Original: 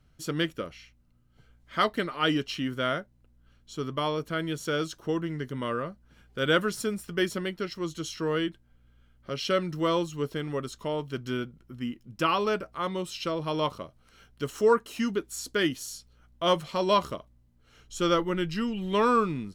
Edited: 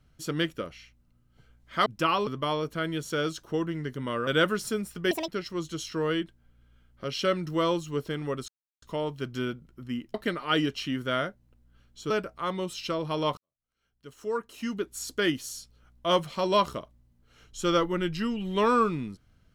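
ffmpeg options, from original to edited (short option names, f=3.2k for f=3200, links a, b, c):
-filter_complex "[0:a]asplit=10[a][b][c][d][e][f][g][h][i][j];[a]atrim=end=1.862[k];[b]atrim=start=12.058:end=12.472[l];[c]atrim=start=3.818:end=5.822[m];[d]atrim=start=6.398:end=7.244[n];[e]atrim=start=7.24:end=7.54,asetpts=PTS-STARTPTS,asetrate=76734,aresample=44100,atrim=end_sample=7603,asetpts=PTS-STARTPTS[o];[f]atrim=start=7.536:end=10.74,asetpts=PTS-STARTPTS,afade=t=out:st=3.2:d=0.004:c=hsin,apad=pad_dur=0.34[p];[g]atrim=start=10.74:end=12.062,asetpts=PTS-STARTPTS,afade=t=in:d=0.004:c=hsin[q];[h]atrim=start=1.858:end=3.822[r];[i]atrim=start=12.468:end=13.74,asetpts=PTS-STARTPTS,afade=t=out:st=1.268:d=0.004:c=hsin[s];[j]atrim=start=13.74,asetpts=PTS-STARTPTS,afade=t=in:d=1.63:c=qua[t];[k][l]acrossfade=d=0.004:c1=hsin:c2=hsin[u];[u][m]acrossfade=d=0.004:c1=hsin:c2=hsin[v];[v][n]acrossfade=d=0.004:c1=hsin:c2=hsin[w];[w][o]acrossfade=d=0.004:c1=hsin:c2=hsin[x];[p][q]concat=n=2:v=0:a=1[y];[x][y]acrossfade=d=0.004:c1=hsin:c2=hsin[z];[z][r]acrossfade=d=0.004:c1=hsin:c2=hsin[aa];[s][t]concat=n=2:v=0:a=1[ab];[aa][ab]acrossfade=d=0.004:c1=hsin:c2=hsin"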